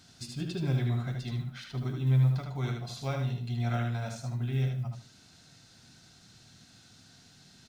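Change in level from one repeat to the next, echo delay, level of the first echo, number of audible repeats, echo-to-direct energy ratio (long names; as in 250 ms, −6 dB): −13.0 dB, 76 ms, −5.0 dB, 2, −5.0 dB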